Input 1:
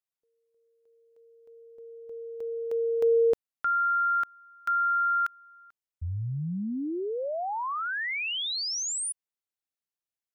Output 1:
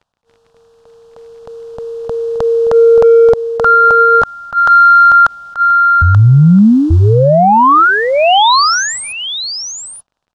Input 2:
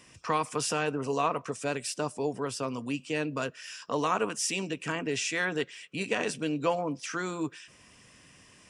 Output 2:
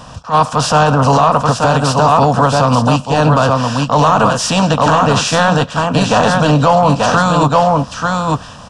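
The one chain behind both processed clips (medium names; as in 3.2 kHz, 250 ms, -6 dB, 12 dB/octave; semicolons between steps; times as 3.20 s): spectral contrast reduction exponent 0.62; in parallel at -6 dB: overload inside the chain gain 26.5 dB; on the sum: static phaser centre 880 Hz, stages 4; saturation -18 dBFS; crackle 23 per s -56 dBFS; tape spacing loss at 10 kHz 27 dB; on a send: delay 883 ms -6 dB; on the sum: loudness maximiser +29.5 dB; attacks held to a fixed rise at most 280 dB/s; trim -1 dB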